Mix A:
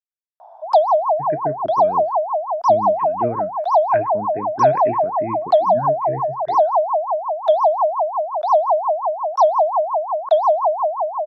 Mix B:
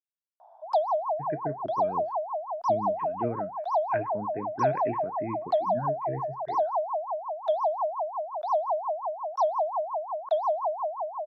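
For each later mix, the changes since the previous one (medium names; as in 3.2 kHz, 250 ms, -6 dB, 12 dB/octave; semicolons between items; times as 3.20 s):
speech -6.0 dB; background -11.0 dB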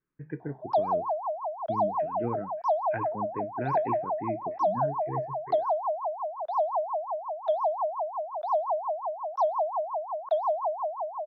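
speech: entry -1.00 s; master: add distance through air 150 m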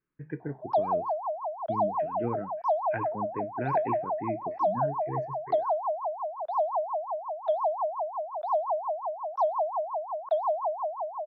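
background: add distance through air 280 m; master: remove distance through air 150 m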